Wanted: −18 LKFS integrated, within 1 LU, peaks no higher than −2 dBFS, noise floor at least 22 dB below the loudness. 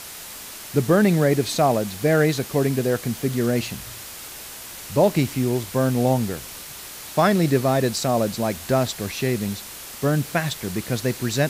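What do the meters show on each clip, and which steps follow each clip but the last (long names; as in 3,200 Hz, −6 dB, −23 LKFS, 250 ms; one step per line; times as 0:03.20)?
background noise floor −38 dBFS; target noise floor −44 dBFS; integrated loudness −22.0 LKFS; sample peak −6.0 dBFS; target loudness −18.0 LKFS
→ broadband denoise 6 dB, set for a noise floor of −38 dBFS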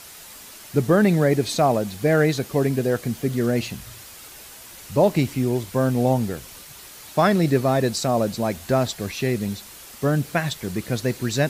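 background noise floor −43 dBFS; target noise floor −44 dBFS
→ broadband denoise 6 dB, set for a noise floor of −43 dBFS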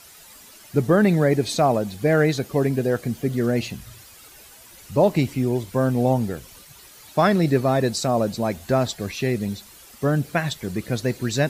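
background noise floor −47 dBFS; integrated loudness −22.0 LKFS; sample peak −6.5 dBFS; target loudness −18.0 LKFS
→ level +4 dB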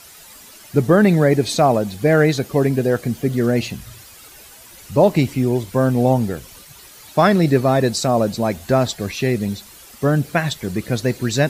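integrated loudness −18.0 LKFS; sample peak −2.5 dBFS; background noise floor −43 dBFS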